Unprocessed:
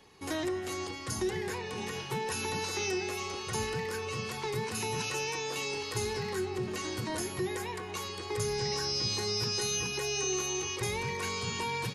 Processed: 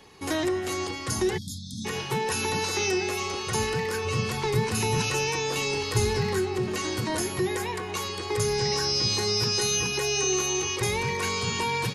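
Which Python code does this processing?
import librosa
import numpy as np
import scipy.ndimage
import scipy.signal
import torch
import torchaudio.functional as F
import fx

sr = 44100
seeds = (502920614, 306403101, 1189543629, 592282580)

y = fx.spec_erase(x, sr, start_s=1.37, length_s=0.48, low_hz=300.0, high_hz=3200.0)
y = fx.low_shelf(y, sr, hz=160.0, db=9.0, at=(4.05, 6.39))
y = y * librosa.db_to_amplitude(6.5)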